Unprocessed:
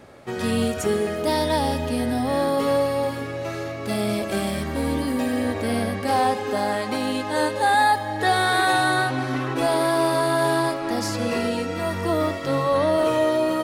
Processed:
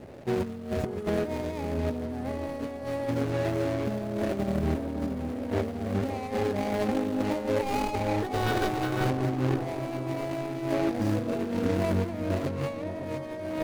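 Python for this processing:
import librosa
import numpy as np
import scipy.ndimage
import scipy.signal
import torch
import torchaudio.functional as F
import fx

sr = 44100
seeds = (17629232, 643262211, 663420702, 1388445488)

p1 = scipy.signal.medfilt(x, 41)
p2 = fx.over_compress(p1, sr, threshold_db=-29.0, ratio=-0.5)
y = p2 + fx.echo_bbd(p2, sr, ms=560, stages=4096, feedback_pct=51, wet_db=-9.5, dry=0)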